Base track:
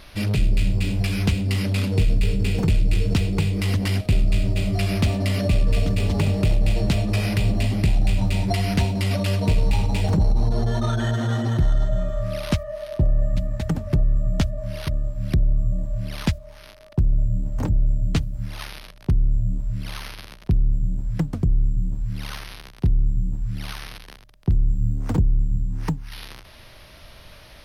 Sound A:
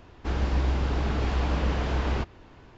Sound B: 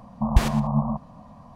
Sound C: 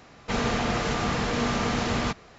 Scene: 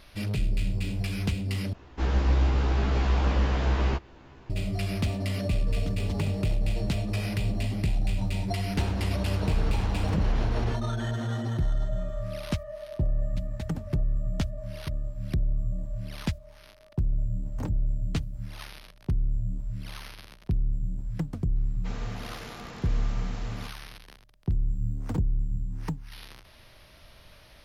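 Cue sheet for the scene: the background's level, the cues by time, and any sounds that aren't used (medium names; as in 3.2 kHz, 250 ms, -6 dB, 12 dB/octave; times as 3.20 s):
base track -7.5 dB
1.73 s: replace with A -2 dB + doubling 15 ms -2 dB
8.52 s: add A -0.5 dB + compression, threshold -27 dBFS
21.56 s: add C -15.5 dB
not used: B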